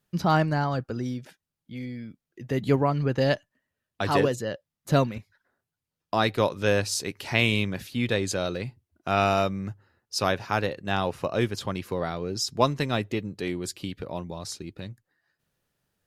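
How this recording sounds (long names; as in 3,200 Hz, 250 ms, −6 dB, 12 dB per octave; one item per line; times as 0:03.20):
background noise floor −88 dBFS
spectral slope −5.0 dB per octave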